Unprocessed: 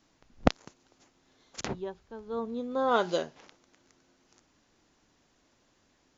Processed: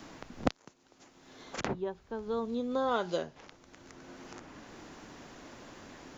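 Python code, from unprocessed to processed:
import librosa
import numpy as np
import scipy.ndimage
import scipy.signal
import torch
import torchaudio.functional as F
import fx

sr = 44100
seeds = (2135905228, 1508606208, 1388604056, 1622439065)

y = fx.band_squash(x, sr, depth_pct=70)
y = y * 10.0 ** (-1.0 / 20.0)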